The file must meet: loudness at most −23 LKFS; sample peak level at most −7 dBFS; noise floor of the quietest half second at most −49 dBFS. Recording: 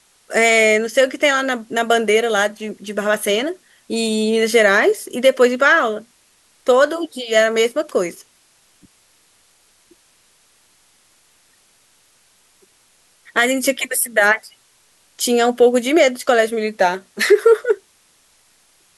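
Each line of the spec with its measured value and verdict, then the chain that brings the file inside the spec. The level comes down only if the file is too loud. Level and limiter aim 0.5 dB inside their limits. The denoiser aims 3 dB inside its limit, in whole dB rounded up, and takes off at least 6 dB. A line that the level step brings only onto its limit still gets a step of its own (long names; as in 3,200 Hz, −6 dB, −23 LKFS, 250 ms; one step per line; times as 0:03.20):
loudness −16.5 LKFS: out of spec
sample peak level −2.5 dBFS: out of spec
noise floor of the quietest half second −56 dBFS: in spec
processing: level −7 dB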